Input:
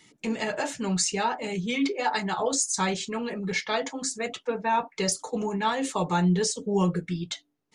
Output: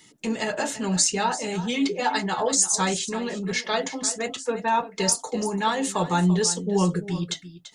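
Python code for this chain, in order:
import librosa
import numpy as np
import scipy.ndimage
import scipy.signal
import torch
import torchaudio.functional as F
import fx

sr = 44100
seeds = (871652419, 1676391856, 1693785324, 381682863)

p1 = fx.high_shelf(x, sr, hz=7200.0, db=7.5)
p2 = fx.notch(p1, sr, hz=2300.0, q=11.0)
p3 = p2 + fx.echo_single(p2, sr, ms=339, db=-14.0, dry=0)
y = p3 * 10.0 ** (2.0 / 20.0)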